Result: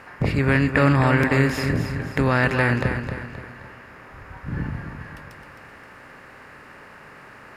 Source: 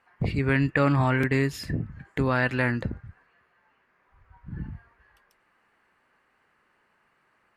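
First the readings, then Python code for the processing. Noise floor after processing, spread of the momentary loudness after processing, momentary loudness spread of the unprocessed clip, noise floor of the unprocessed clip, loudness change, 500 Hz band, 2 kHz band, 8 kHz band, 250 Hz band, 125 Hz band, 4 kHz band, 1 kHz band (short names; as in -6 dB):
-45 dBFS, 20 LU, 17 LU, -69 dBFS, +4.5 dB, +5.0 dB, +6.0 dB, +6.0 dB, +5.0 dB, +5.5 dB, +6.0 dB, +5.5 dB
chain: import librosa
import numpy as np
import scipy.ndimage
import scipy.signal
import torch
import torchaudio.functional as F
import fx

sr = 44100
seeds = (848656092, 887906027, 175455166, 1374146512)

p1 = fx.bin_compress(x, sr, power=0.6)
p2 = p1 + fx.echo_feedback(p1, sr, ms=263, feedback_pct=42, wet_db=-8, dry=0)
y = p2 * librosa.db_to_amplitude(2.0)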